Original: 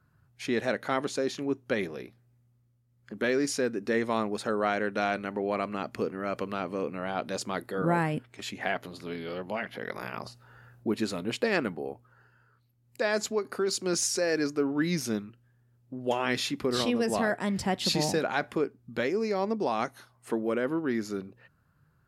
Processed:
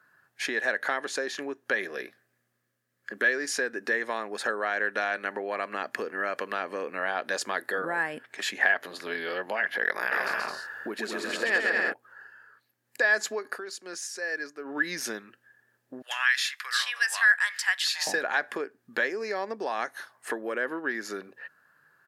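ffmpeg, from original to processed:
-filter_complex "[0:a]asettb=1/sr,asplit=3[a][b][c];[a]atrim=end=1.814[d];[b]atrim=start=1.81:end=3.34,asetpts=PTS-STARTPTS,afade=t=in:d=0.004:c=qsin,afade=t=out:st=1.526:d=0.004:c=qsin,equalizer=f=870:w=6.5:g=-10[e];[c]atrim=start=3.336[f];[d][e]acrossfade=d=0.004:c1=hsin:c2=qsin[g];[g][f]acrossfade=d=0.004:c1=qsin:c2=hsin,asplit=3[h][i][j];[h]afade=t=out:st=10.11:d=0.02[k];[i]aecho=1:1:130|214.5|269.4|305.1|328.3:0.794|0.631|0.501|0.398|0.316,afade=t=in:st=10.11:d=0.02,afade=t=out:st=11.92:d=0.02[l];[j]afade=t=in:st=11.92:d=0.02[m];[k][l][m]amix=inputs=3:normalize=0,asettb=1/sr,asplit=3[n][o][p];[n]atrim=end=16.024[q];[o]atrim=start=16.02:end=18.07,asetpts=PTS-STARTPTS,afade=t=in:d=0.004:c=qsin,afade=t=out:st=2.046:d=0.004:c=qsin,highpass=f=1.3k:w=0.5412,highpass=f=1.3k:w=1.3066[r];[p]atrim=start=18.066[s];[q][r]acrossfade=d=0.004:c1=hsin:c2=qsin[t];[t][s]acrossfade=d=0.004:c1=qsin:c2=hsin,asplit=3[u][v][w];[u]atrim=end=13.61,asetpts=PTS-STARTPTS,afade=t=out:st=13.47:d=0.14:silence=0.177828[x];[v]atrim=start=13.61:end=14.64,asetpts=PTS-STARTPTS,volume=-15dB[y];[w]atrim=start=14.64,asetpts=PTS-STARTPTS,afade=t=in:d=0.14:silence=0.177828[z];[x][y][z]concat=n=3:v=0:a=1,acompressor=threshold=-32dB:ratio=6,highpass=450,equalizer=f=1.7k:w=5.6:g=14.5,volume=6.5dB"

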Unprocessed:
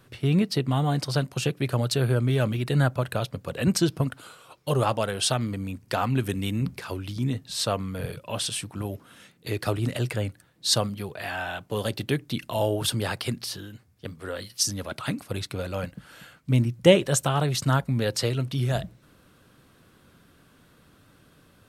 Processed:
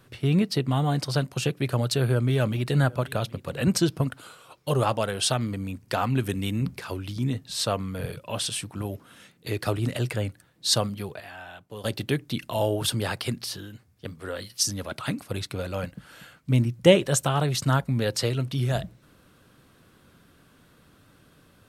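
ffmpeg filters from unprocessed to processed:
-filter_complex "[0:a]asettb=1/sr,asplit=3[a][b][c];[a]atrim=end=1.764[d];[b]atrim=start=1.76:end=3.78,asetpts=PTS-STARTPTS,afade=t=in:d=0.004:c=qsin,afade=t=out:st=2.016:d=0.004:c=qsin,aecho=1:1:768:0.0891,atrim=end_sample=89082[e];[c]atrim=start=3.776[f];[d][e]acrossfade=d=0.004:c1=hsin:c2=qsin[g];[g][f]acrossfade=d=0.004:c1=qsin:c2=hsin,asplit=3[h][i][j];[h]atrim=end=11.202[k];[i]atrim=start=11.198:end=11.842,asetpts=PTS-STARTPTS,volume=-10.5dB[l];[j]atrim=start=11.838[m];[k][l]acrossfade=d=0.004:c1=hsin:c2=hsin[n];[n][m]acrossfade=d=0.004:c1=hsin:c2=hsin"

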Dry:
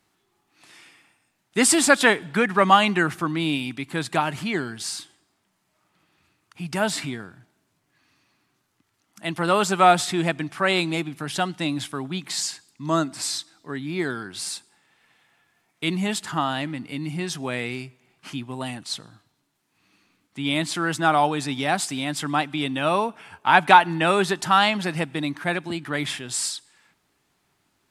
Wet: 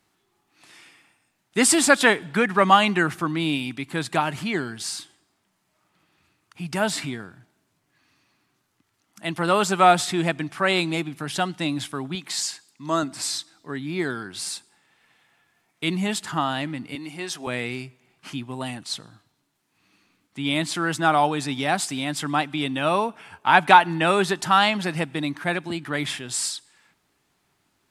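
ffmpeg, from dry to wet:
-filter_complex "[0:a]asettb=1/sr,asplit=3[a][b][c];[a]atrim=end=12.154[d];[b]atrim=start=12.15:end=13.03,asetpts=PTS-STARTPTS,afade=t=in:d=0.004:c=qsin,afade=t=out:st=0.876:d=0.004:c=qsin,lowshelf=f=180:g=-11[e];[c]atrim=start=13.026[f];[d][e]acrossfade=d=0.004:c1=hsin:c2=qsin[g];[g][f]acrossfade=d=0.004:c1=qsin:c2=hsin,asettb=1/sr,asplit=3[h][i][j];[h]atrim=end=16.954[k];[i]atrim=start=16.95:end=17.47,asetpts=PTS-STARTPTS,afade=t=in:d=0.004:c=qsin,afade=t=out:st=0.516:d=0.004:c=qsin,highpass=340[l];[j]atrim=start=17.466[m];[k][l]acrossfade=d=0.004:c1=hsin:c2=qsin[n];[n][m]acrossfade=d=0.004:c1=qsin:c2=hsin"

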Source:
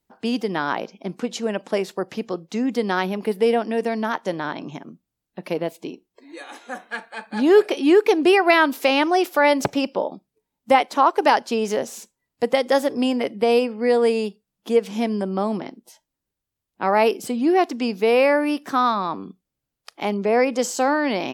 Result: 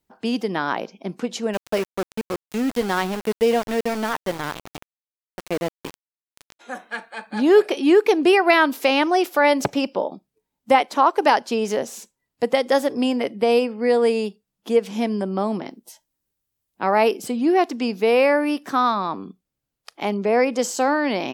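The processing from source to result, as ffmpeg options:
-filter_complex "[0:a]asplit=3[a][b][c];[a]afade=t=out:st=1.53:d=0.02[d];[b]aeval=exprs='val(0)*gte(abs(val(0)),0.0473)':c=same,afade=t=in:st=1.53:d=0.02,afade=t=out:st=6.59:d=0.02[e];[c]afade=t=in:st=6.59:d=0.02[f];[d][e][f]amix=inputs=3:normalize=0,asettb=1/sr,asplit=3[g][h][i];[g]atrim=end=15.654[j];[h]atrim=start=15.65:end=16.85,asetpts=PTS-STARTPTS,afade=t=in:d=0.004:c=qsin,afade=t=out:st=1.196:d=0.004:c=qsin,highshelf=f=6.5k:g=8[k];[i]atrim=start=16.846[l];[j][k]acrossfade=d=0.004:c1=hsin:c2=qsin[m];[m][l]acrossfade=d=0.004:c1=qsin:c2=hsin"

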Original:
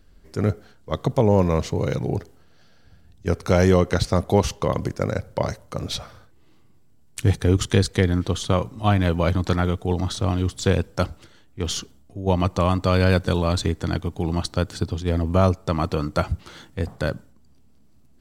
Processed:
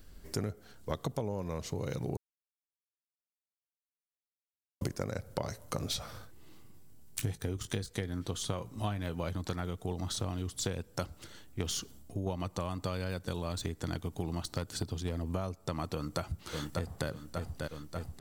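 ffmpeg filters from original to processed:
-filter_complex "[0:a]asettb=1/sr,asplit=3[a][b][c];[a]atrim=end=5.434[d];[b]atrim=start=5.43:end=9.22,asetpts=PTS-STARTPTS,afade=t=in:d=0.004:c=qsin,afade=t=out:st=3.786:d=0.004:c=qsin,asplit=2[e][f];[f]adelay=19,volume=-14dB[g];[e][g]amix=inputs=2:normalize=0,atrim=end_sample=167139[h];[c]atrim=start=9.216[i];[d][h]acrossfade=d=0.004:c1=hsin:c2=qsin[j];[j][i]acrossfade=d=0.004:c1=qsin:c2=hsin,asettb=1/sr,asplit=3[k][l][m];[k]atrim=end=13.784[n];[l]atrim=start=13.78:end=15.24,asetpts=PTS-STARTPTS,afade=t=in:d=0.004:c=qsin,afade=t=out:st=1.456:d=0.004:c=qsin,volume=12dB,asoftclip=hard,volume=-12dB[o];[m]atrim=start=15.236[p];[n][o]acrossfade=d=0.004:c1=hsin:c2=qsin[q];[q][p]acrossfade=d=0.004:c1=qsin:c2=hsin,asplit=2[r][s];[s]afade=t=in:st=15.94:d=0.01,afade=t=out:st=17.08:d=0.01,aecho=0:1:590|1180|1770|2360|2950|3540|4130|4720:0.223872|0.145517|0.094586|0.0614809|0.0399626|0.0259757|0.0168842|0.0109747[t];[r][t]amix=inputs=2:normalize=0,asplit=3[u][v][w];[u]atrim=end=2.17,asetpts=PTS-STARTPTS,afade=t=out:st=2.166:d=0.004:c=hsin[x];[v]atrim=start=2.17:end=4.81,asetpts=PTS-STARTPTS,volume=0[y];[w]atrim=start=4.81,asetpts=PTS-STARTPTS,afade=t=in:d=0.004:c=hsin[z];[x][y][z]concat=n=3:v=0:a=1,deesser=0.55,highshelf=f=7.1k:g=12,acompressor=threshold=-31dB:ratio=16"

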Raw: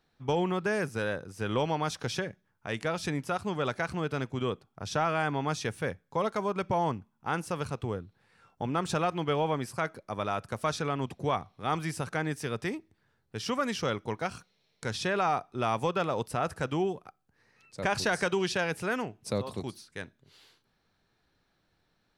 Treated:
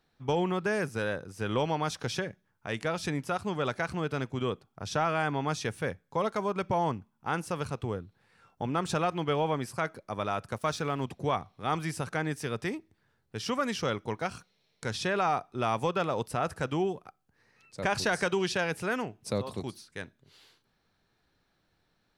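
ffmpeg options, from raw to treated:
-filter_complex "[0:a]asettb=1/sr,asplit=3[a][b][c];[a]atrim=end=10.584[d];[b]atrim=start=10.58:end=11.05,asetpts=PTS-STARTPTS,afade=t=in:d=0.004:c=qsin,afade=t=out:st=0.466:d=0.004:c=qsin,aeval=exprs='sgn(val(0))*max(abs(val(0))-0.00168,0)':c=same[e];[c]atrim=start=11.046[f];[d][e]acrossfade=d=0.004:c1=hsin:c2=qsin[g];[g][f]acrossfade=d=0.004:c1=qsin:c2=hsin"

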